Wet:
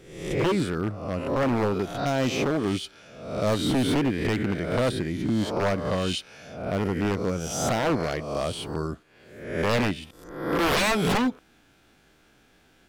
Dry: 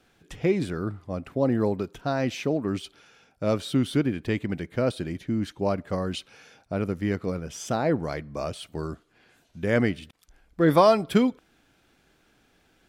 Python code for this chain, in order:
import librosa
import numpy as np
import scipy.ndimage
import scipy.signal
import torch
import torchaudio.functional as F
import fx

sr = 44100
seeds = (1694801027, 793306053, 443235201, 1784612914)

y = fx.spec_swells(x, sr, rise_s=0.76)
y = fx.high_shelf(y, sr, hz=9500.0, db=7.5, at=(7.4, 7.8))
y = 10.0 ** (-19.0 / 20.0) * (np.abs((y / 10.0 ** (-19.0 / 20.0) + 3.0) % 4.0 - 2.0) - 1.0)
y = F.gain(torch.from_numpy(y), 1.5).numpy()